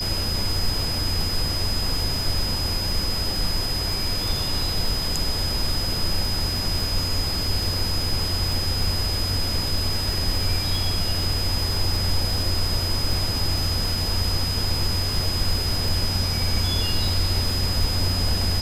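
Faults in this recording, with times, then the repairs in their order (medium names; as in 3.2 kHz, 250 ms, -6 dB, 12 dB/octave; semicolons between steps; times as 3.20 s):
crackle 25 per s -26 dBFS
whine 5 kHz -26 dBFS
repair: de-click; band-stop 5 kHz, Q 30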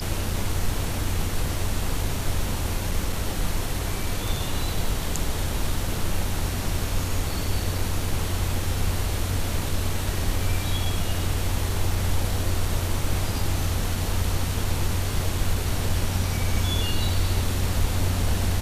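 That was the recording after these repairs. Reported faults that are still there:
nothing left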